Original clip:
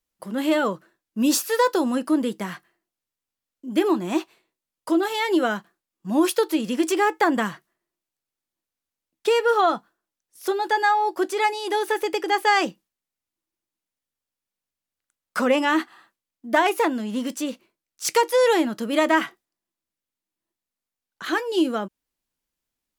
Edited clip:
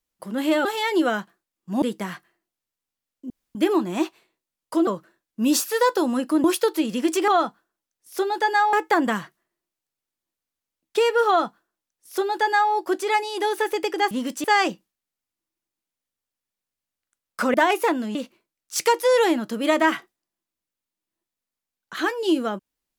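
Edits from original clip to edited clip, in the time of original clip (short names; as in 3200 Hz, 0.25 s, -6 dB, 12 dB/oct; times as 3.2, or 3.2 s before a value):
0.65–2.22 swap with 5.02–6.19
3.7 insert room tone 0.25 s
9.57–11.02 copy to 7.03
15.51–16.5 cut
17.11–17.44 move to 12.41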